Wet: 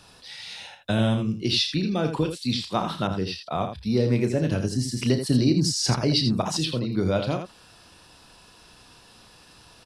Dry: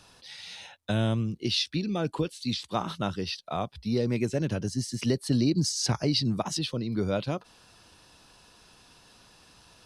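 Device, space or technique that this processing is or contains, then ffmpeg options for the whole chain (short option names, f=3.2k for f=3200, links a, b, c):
slapback doubling: -filter_complex "[0:a]asplit=3[a][b][c];[b]adelay=32,volume=-9dB[d];[c]adelay=82,volume=-8dB[e];[a][d][e]amix=inputs=3:normalize=0,bandreject=f=6.3k:w=15,asettb=1/sr,asplit=3[f][g][h];[f]atrim=end=3.074[i];[g]atrim=start=3.07:end=4.45,asetpts=PTS-STARTPTS,afade=t=in:d=0.004:c=qsin,afade=t=out:st=1.376:d=0.004:c=qsin,adynamicequalizer=threshold=0.00708:dfrequency=1800:dqfactor=0.7:tfrequency=1800:tqfactor=0.7:attack=5:release=100:ratio=0.375:range=2:mode=cutabove:tftype=highshelf[j];[h]atrim=start=4.446[k];[i][j]acrossfade=d=0.004:c1=hsin:c2=qsin[l];[l][k]acrossfade=d=0.004:c1=qsin:c2=hsin,volume=3.5dB"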